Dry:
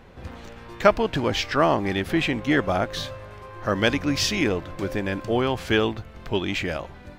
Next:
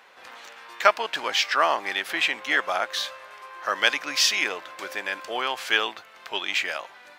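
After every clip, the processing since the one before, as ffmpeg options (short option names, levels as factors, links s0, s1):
-af "highpass=990,volume=1.58"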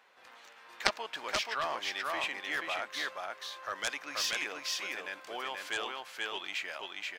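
-af "aecho=1:1:481:0.708,aeval=exprs='0.891*(cos(1*acos(clip(val(0)/0.891,-1,1)))-cos(1*PI/2))+0.447*(cos(3*acos(clip(val(0)/0.891,-1,1)))-cos(3*PI/2))':c=same,volume=0.562"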